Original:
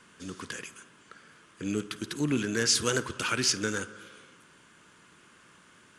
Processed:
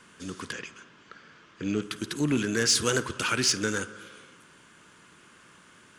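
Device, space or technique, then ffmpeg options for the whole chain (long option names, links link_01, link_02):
parallel distortion: -filter_complex "[0:a]asplit=2[link_01][link_02];[link_02]asoftclip=type=hard:threshold=-24dB,volume=-9.5dB[link_03];[link_01][link_03]amix=inputs=2:normalize=0,asettb=1/sr,asplit=3[link_04][link_05][link_06];[link_04]atrim=end=0.524[link_07];[link_05]atrim=start=0.52:end=1.82,asetpts=PTS-STARTPTS,afade=type=in:duration=0.004:curve=qsin,afade=type=out:start_time=1.296:duration=0.004:curve=qsin,lowpass=frequency=5900:width=0.5412,lowpass=frequency=5900:width=1.3066[link_08];[link_06]atrim=start=1.816[link_09];[link_07][link_08]acrossfade=duration=0.004:curve1=hsin:curve2=qsin[link_10];[link_10][link_09]acrossfade=duration=0.004:curve1=qsin:curve2=hsin"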